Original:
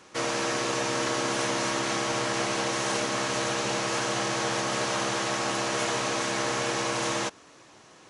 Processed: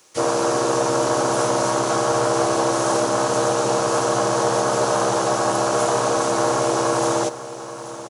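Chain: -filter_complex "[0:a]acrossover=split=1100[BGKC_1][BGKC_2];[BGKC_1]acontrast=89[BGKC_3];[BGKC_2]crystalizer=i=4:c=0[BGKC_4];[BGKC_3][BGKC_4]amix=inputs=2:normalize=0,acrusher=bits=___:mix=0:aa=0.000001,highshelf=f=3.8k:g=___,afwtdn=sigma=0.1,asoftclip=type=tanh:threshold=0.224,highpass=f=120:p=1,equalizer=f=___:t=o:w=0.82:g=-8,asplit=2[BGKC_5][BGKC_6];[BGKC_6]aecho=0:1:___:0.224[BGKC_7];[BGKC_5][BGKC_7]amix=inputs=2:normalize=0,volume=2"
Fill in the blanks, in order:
9, 5, 220, 832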